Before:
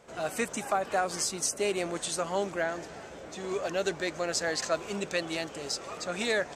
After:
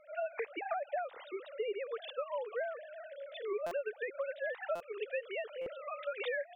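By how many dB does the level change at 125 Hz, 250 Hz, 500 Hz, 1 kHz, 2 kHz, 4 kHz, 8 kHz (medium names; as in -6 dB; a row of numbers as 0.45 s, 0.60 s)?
under -25 dB, -17.0 dB, -5.0 dB, -8.5 dB, -8.0 dB, -15.5 dB, under -35 dB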